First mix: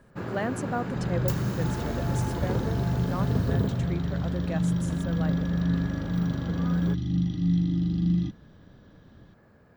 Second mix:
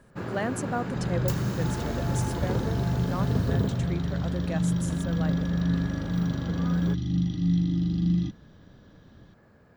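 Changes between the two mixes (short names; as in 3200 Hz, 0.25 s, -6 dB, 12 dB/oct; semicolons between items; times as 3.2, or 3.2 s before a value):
first sound: add high shelf 10000 Hz -8.5 dB; master: add high shelf 5100 Hz +6.5 dB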